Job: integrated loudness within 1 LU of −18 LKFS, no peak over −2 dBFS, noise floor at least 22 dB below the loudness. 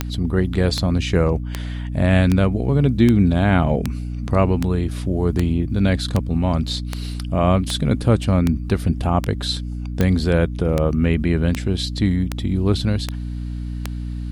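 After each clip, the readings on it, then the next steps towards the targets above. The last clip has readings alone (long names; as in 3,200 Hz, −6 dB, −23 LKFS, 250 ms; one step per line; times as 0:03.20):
number of clicks 19; mains hum 60 Hz; hum harmonics up to 300 Hz; level of the hum −24 dBFS; integrated loudness −20.0 LKFS; sample peak −4.0 dBFS; target loudness −18.0 LKFS
→ click removal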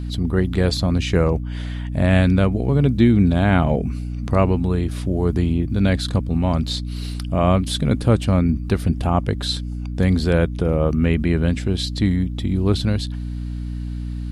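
number of clicks 0; mains hum 60 Hz; hum harmonics up to 300 Hz; level of the hum −24 dBFS
→ hum removal 60 Hz, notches 5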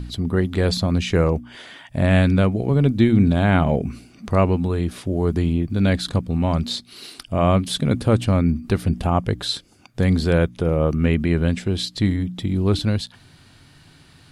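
mains hum none found; integrated loudness −20.5 LKFS; sample peak −5.0 dBFS; target loudness −18.0 LKFS
→ level +2.5 dB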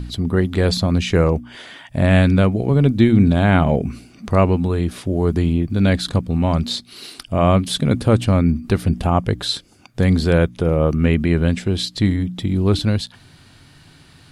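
integrated loudness −18.0 LKFS; sample peak −2.5 dBFS; background noise floor −49 dBFS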